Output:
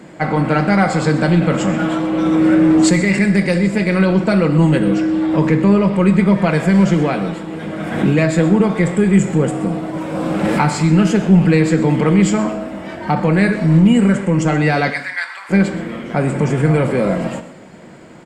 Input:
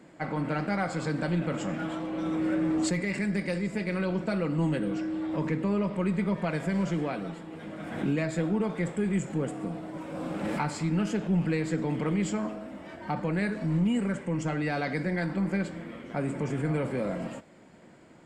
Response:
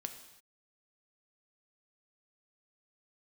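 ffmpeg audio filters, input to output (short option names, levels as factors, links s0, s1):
-filter_complex "[0:a]asplit=3[s0][s1][s2];[s0]afade=t=out:st=14.89:d=0.02[s3];[s1]highpass=f=1100:w=0.5412,highpass=f=1100:w=1.3066,afade=t=in:st=14.89:d=0.02,afade=t=out:st=15.49:d=0.02[s4];[s2]afade=t=in:st=15.49:d=0.02[s5];[s3][s4][s5]amix=inputs=3:normalize=0,aecho=1:1:126:0.141,asplit=2[s6][s7];[1:a]atrim=start_sample=2205,asetrate=52920,aresample=44100[s8];[s7][s8]afir=irnorm=-1:irlink=0,volume=2.11[s9];[s6][s9]amix=inputs=2:normalize=0,volume=2.24"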